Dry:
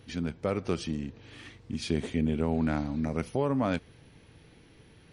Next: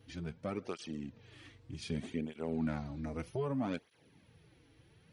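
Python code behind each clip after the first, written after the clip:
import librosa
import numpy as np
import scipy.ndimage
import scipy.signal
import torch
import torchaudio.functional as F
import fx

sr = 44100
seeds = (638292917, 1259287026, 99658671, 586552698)

y = fx.flanger_cancel(x, sr, hz=0.64, depth_ms=5.6)
y = y * 10.0 ** (-5.5 / 20.0)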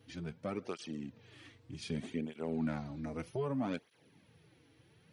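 y = scipy.signal.sosfilt(scipy.signal.butter(2, 100.0, 'highpass', fs=sr, output='sos'), x)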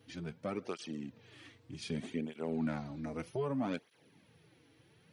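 y = fx.low_shelf(x, sr, hz=62.0, db=-11.0)
y = y * 10.0 ** (1.0 / 20.0)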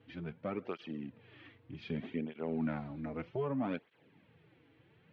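y = scipy.signal.sosfilt(scipy.signal.butter(4, 3100.0, 'lowpass', fs=sr, output='sos'), x)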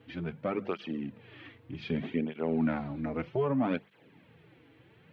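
y = fx.hum_notches(x, sr, base_hz=50, count=4)
y = y * 10.0 ** (6.5 / 20.0)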